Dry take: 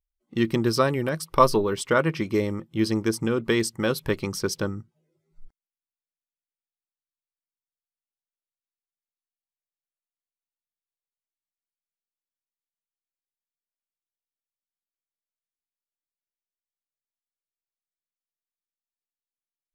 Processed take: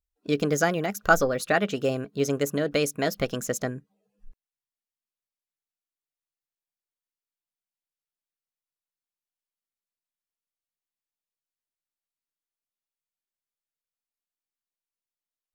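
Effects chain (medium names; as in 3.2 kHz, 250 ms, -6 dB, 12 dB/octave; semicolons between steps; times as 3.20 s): tape speed +27%; trim -1.5 dB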